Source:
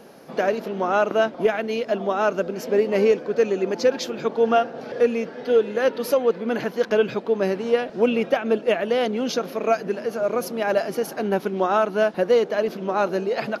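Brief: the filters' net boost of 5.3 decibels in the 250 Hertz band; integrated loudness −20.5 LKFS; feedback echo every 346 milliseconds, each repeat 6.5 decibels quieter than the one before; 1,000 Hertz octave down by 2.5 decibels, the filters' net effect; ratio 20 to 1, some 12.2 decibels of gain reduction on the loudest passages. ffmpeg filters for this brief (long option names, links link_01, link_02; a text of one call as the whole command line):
ffmpeg -i in.wav -af "equalizer=frequency=250:width_type=o:gain=6.5,equalizer=frequency=1000:width_type=o:gain=-4.5,acompressor=threshold=-24dB:ratio=20,aecho=1:1:346|692|1038|1384|1730|2076:0.473|0.222|0.105|0.0491|0.0231|0.0109,volume=8dB" out.wav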